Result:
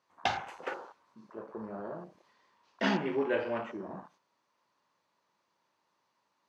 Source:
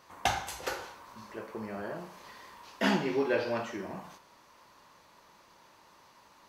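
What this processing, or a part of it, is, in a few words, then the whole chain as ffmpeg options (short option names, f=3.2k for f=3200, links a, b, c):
over-cleaned archive recording: -filter_complex "[0:a]highpass=120,lowpass=7.8k,afwtdn=0.00891,asettb=1/sr,asplit=3[a][b][c];[a]atrim=end=2.334[d];[b]atrim=start=2.33:end=3.1,asetpts=PTS-STARTPTS,afade=t=in:d=0.004:c=qsin,afade=t=out:st=0.766:d=0.004:c=qsin,lowpass=7.9k[e];[c]atrim=start=3.096[f];[d][e]acrossfade=d=0.004:c1=hsin:c2=qsin[g];[g][f]acrossfade=d=0.004:c1=qsin:c2=hsin,volume=-1.5dB"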